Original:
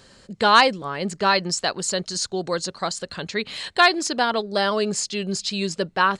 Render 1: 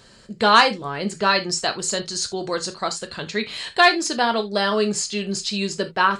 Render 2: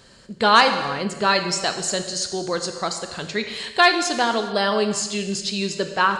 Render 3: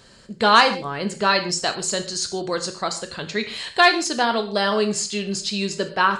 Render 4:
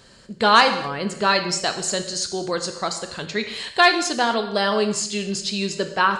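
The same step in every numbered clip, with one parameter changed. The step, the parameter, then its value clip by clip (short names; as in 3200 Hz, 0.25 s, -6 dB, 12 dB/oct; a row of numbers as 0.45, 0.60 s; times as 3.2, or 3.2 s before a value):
non-linear reverb, gate: 0.1, 0.45, 0.18, 0.29 s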